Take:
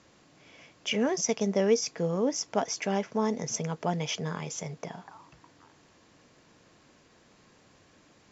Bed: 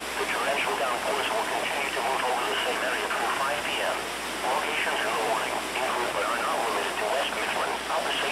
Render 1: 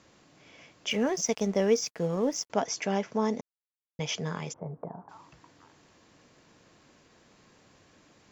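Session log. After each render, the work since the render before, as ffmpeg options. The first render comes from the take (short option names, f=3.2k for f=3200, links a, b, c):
-filter_complex "[0:a]asettb=1/sr,asplit=3[a][b][c];[a]atrim=end=0.904[d];[b]atrim=start=0.9:end=2.5,asetpts=PTS-STARTPTS,afade=t=in:d=0.004:c=qsin,afade=t=out:st=1.596:d=0.004:c=qsin,aeval=exprs='sgn(val(0))*max(abs(val(0))-0.00316,0)':c=same[e];[c]atrim=start=2.496[f];[d][e]acrossfade=d=0.004:c1=hsin:c2=qsin[g];[g][f]acrossfade=d=0.004:c1=qsin:c2=hsin,asplit=3[h][i][j];[h]afade=t=out:st=4.52:d=0.02[k];[i]lowpass=f=1.1k:w=0.5412,lowpass=f=1.1k:w=1.3066,afade=t=in:st=4.52:d=0.02,afade=t=out:st=5.08:d=0.02[l];[j]afade=t=in:st=5.08:d=0.02[m];[k][l][m]amix=inputs=3:normalize=0,asplit=3[n][o][p];[n]atrim=end=3.41,asetpts=PTS-STARTPTS,afade=t=out:st=3.406:d=0.004:c=hsin[q];[o]atrim=start=3.41:end=3.99,asetpts=PTS-STARTPTS,volume=0[r];[p]atrim=start=3.99,asetpts=PTS-STARTPTS,afade=t=in:d=0.004:c=hsin[s];[q][r][s]concat=n=3:v=0:a=1"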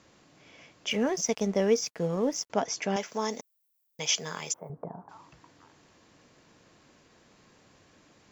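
-filter_complex "[0:a]asettb=1/sr,asplit=3[a][b][c];[a]atrim=end=2.964[d];[b]atrim=start=2.96:end=4.7,asetpts=PTS-STARTPTS,afade=t=in:d=0.004:c=qsin,afade=t=out:st=1.736:d=0.004:c=qsin,aemphasis=mode=production:type=riaa[e];[c]atrim=start=4.696[f];[d][e]acrossfade=d=0.004:c1=hsin:c2=qsin[g];[g][f]acrossfade=d=0.004:c1=qsin:c2=hsin"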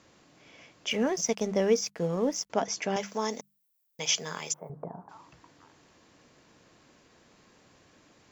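-af "bandreject=f=50:t=h:w=6,bandreject=f=100:t=h:w=6,bandreject=f=150:t=h:w=6,bandreject=f=200:t=h:w=6"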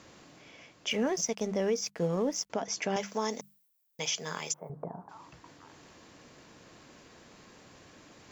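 -af "alimiter=limit=-20dB:level=0:latency=1:release=178,areverse,acompressor=mode=upward:threshold=-47dB:ratio=2.5,areverse"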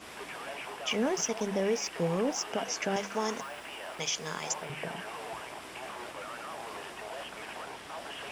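-filter_complex "[1:a]volume=-14.5dB[a];[0:a][a]amix=inputs=2:normalize=0"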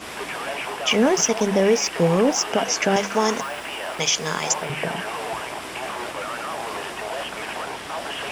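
-af "volume=11.5dB"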